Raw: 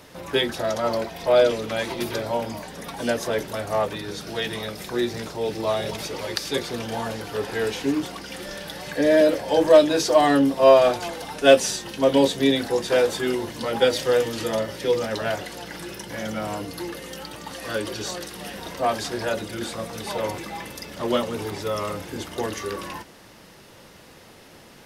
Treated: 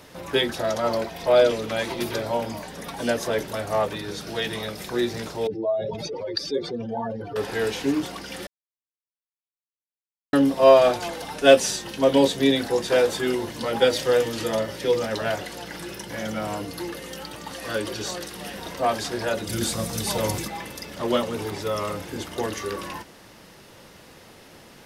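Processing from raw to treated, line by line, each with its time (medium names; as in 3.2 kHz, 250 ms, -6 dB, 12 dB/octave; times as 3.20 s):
5.47–7.36 s: spectral contrast enhancement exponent 2.2
8.47–10.33 s: mute
19.47–20.48 s: tone controls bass +9 dB, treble +11 dB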